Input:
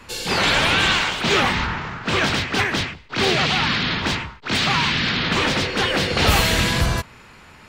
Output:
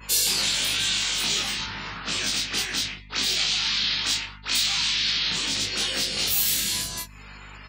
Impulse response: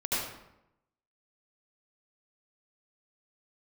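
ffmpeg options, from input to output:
-filter_complex "[0:a]acrossover=split=300|3000[link_01][link_02][link_03];[link_02]acompressor=threshold=-42dB:ratio=2[link_04];[link_01][link_04][link_03]amix=inputs=3:normalize=0,asettb=1/sr,asplit=3[link_05][link_06][link_07];[link_05]atrim=end=3.234[link_08];[link_06]atrim=start=3.23:end=5.29,asetpts=PTS-STARTPTS,afade=type=in:duration=0.004:curve=qsin,afade=type=out:start_time=2.056:duration=0.004:curve=qsin,lowshelf=frequency=490:gain=-8[link_09];[link_07]atrim=start=5.286[link_10];[link_08][link_09]acrossfade=duration=0.004:curve1=hsin:curve2=qsin[link_11];[link_11][link_10]acrossfade=duration=0.004:curve1=qsin:curve2=hsin,acompressor=threshold=-27dB:ratio=8,asplit=2[link_12][link_13];[link_13]adelay=30,volume=-4dB[link_14];[link_12][link_14]amix=inputs=2:normalize=0,aecho=1:1:19|40:0.668|0.178,afftdn=noise_reduction=36:noise_floor=-49,aemphasis=mode=production:type=riaa,aeval=exprs='val(0)+0.00708*(sin(2*PI*50*n/s)+sin(2*PI*2*50*n/s)/2+sin(2*PI*3*50*n/s)/3+sin(2*PI*4*50*n/s)/4+sin(2*PI*5*50*n/s)/5)':channel_layout=same,volume=-2dB"

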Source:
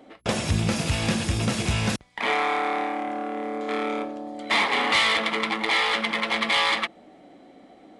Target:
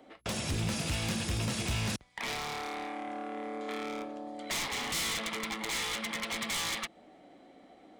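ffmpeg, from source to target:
ffmpeg -i in.wav -filter_complex "[0:a]equalizer=frequency=220:width_type=o:width=2.3:gain=-3,aeval=exprs='0.0944*(abs(mod(val(0)/0.0944+3,4)-2)-1)':channel_layout=same,acrossover=split=290|3000[link_01][link_02][link_03];[link_02]acompressor=threshold=-33dB:ratio=6[link_04];[link_01][link_04][link_03]amix=inputs=3:normalize=0,volume=-4.5dB" out.wav

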